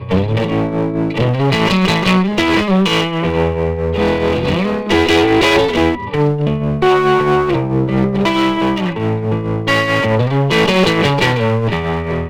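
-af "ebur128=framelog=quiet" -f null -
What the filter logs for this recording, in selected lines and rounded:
Integrated loudness:
  I:         -14.4 LUFS
  Threshold: -24.4 LUFS
Loudness range:
  LRA:         1.5 LU
  Threshold: -34.3 LUFS
  LRA low:   -15.0 LUFS
  LRA high:  -13.5 LUFS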